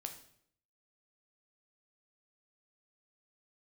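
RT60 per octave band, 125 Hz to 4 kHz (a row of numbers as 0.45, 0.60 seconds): 0.80, 0.75, 0.70, 0.60, 0.60, 0.55 seconds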